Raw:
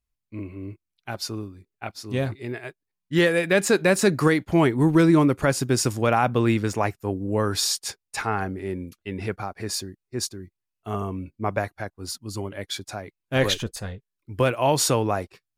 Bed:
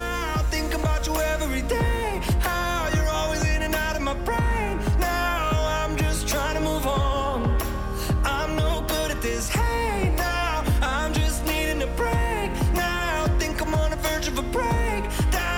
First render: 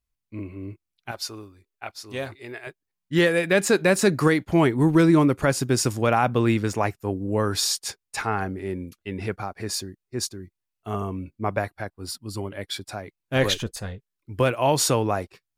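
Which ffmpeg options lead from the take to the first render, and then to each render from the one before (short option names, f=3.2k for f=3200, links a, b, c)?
-filter_complex "[0:a]asettb=1/sr,asplit=3[a][b][c];[a]atrim=end=1.114[d];[b]atrim=start=1.11:end=2.67,asetpts=PTS-STARTPTS,afade=t=in:d=0.004:c=qsin,afade=t=out:st=1.556:d=0.004:c=qsin,equalizer=f=160:t=o:w=2:g=-13.5[e];[c]atrim=start=2.666[f];[d][e]acrossfade=d=0.004:c1=hsin:c2=qsin[g];[g][f]acrossfade=d=0.004:c1=qsin:c2=hsin,asettb=1/sr,asplit=3[h][i][j];[h]atrim=end=11.484[k];[i]atrim=start=11.48:end=12.94,asetpts=PTS-STARTPTS,afade=t=in:d=0.004:c=qsin,afade=t=out:st=1.456:d=0.004:c=qsin,bandreject=f=6.4k:w=5.7[l];[j]atrim=start=12.936[m];[k][l]acrossfade=d=0.004:c1=hsin:c2=qsin[n];[n][m]acrossfade=d=0.004:c1=qsin:c2=hsin"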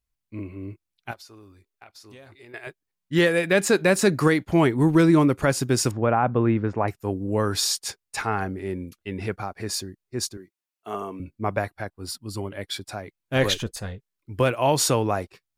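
-filter_complex "[0:a]asettb=1/sr,asplit=3[a][b][c];[a]atrim=end=1.134[d];[b]atrim=start=1.13:end=2.54,asetpts=PTS-STARTPTS,afade=t=in:d=0.004:c=qsin,afade=t=out:st=1.406:d=0.004:c=qsin,acompressor=threshold=-44dB:ratio=6:attack=3.2:release=140:knee=1:detection=peak[e];[c]atrim=start=2.536[f];[d][e]acrossfade=d=0.004:c1=hsin:c2=qsin[g];[g][f]acrossfade=d=0.004:c1=qsin:c2=hsin,asettb=1/sr,asplit=3[h][i][j];[h]atrim=end=5.914[k];[i]atrim=start=5.91:end=6.88,asetpts=PTS-STARTPTS,afade=t=in:d=0.004:c=qsin,afade=t=out:st=0.966:d=0.004:c=qsin,lowpass=1.5k[l];[j]atrim=start=6.876[m];[k][l]acrossfade=d=0.004:c1=hsin:c2=qsin[n];[n][m]acrossfade=d=0.004:c1=qsin:c2=hsin,asettb=1/sr,asplit=3[o][p][q];[o]atrim=end=10.374[r];[p]atrim=start=10.37:end=11.2,asetpts=PTS-STARTPTS,afade=t=in:d=0.004:c=qsin,afade=t=out:st=0.826:d=0.004:c=qsin,highpass=300[s];[q]atrim=start=11.196[t];[r][s]acrossfade=d=0.004:c1=hsin:c2=qsin[u];[u][t]acrossfade=d=0.004:c1=qsin:c2=hsin"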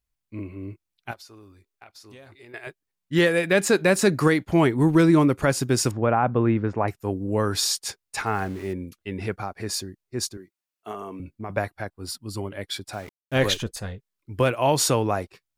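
-filter_complex "[0:a]asettb=1/sr,asplit=3[a][b][c];[a]atrim=end=8.264[d];[b]atrim=start=8.26:end=8.73,asetpts=PTS-STARTPTS,afade=t=in:d=0.004:c=qsin,afade=t=out:st=0.466:d=0.004:c=qsin,aeval=exprs='val(0)*gte(abs(val(0)),0.00891)':c=same[e];[c]atrim=start=8.726[f];[d][e]acrossfade=d=0.004:c1=hsin:c2=qsin[g];[g][f]acrossfade=d=0.004:c1=qsin:c2=hsin,asettb=1/sr,asplit=3[h][i][j];[h]atrim=end=10.914[k];[i]atrim=start=10.91:end=11.5,asetpts=PTS-STARTPTS,afade=t=in:d=0.004:c=qsin,afade=t=out:st=0.586:d=0.004:c=qsin,acompressor=threshold=-31dB:ratio=3:attack=3.2:release=140:knee=1:detection=peak[l];[j]atrim=start=11.496[m];[k][l]acrossfade=d=0.004:c1=hsin:c2=qsin[n];[n][m]acrossfade=d=0.004:c1=qsin:c2=hsin,asettb=1/sr,asplit=3[o][p][q];[o]atrim=end=12.934[r];[p]atrim=start=12.93:end=13.57,asetpts=PTS-STARTPTS,afade=t=in:d=0.004:c=qsin,afade=t=out:st=0.636:d=0.004:c=qsin,aeval=exprs='val(0)*gte(abs(val(0)),0.00794)':c=same[s];[q]atrim=start=13.566[t];[r][s]acrossfade=d=0.004:c1=hsin:c2=qsin[u];[u][t]acrossfade=d=0.004:c1=qsin:c2=hsin"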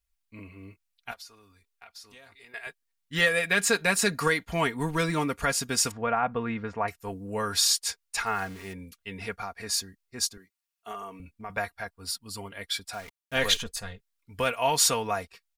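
-af "equalizer=f=280:t=o:w=2.5:g=-13,aecho=1:1:4.3:0.65"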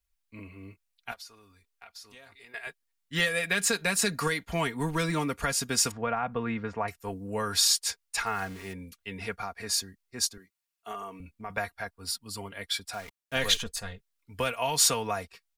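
-filter_complex "[0:a]acrossover=split=180|3000[a][b][c];[b]acompressor=threshold=-26dB:ratio=6[d];[a][d][c]amix=inputs=3:normalize=0"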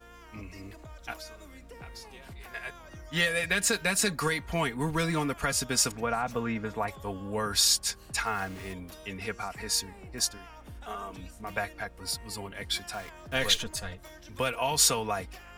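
-filter_complex "[1:a]volume=-24dB[a];[0:a][a]amix=inputs=2:normalize=0"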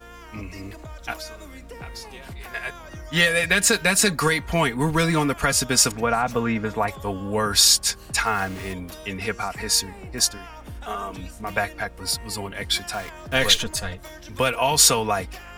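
-af "volume=8dB,alimiter=limit=-3dB:level=0:latency=1"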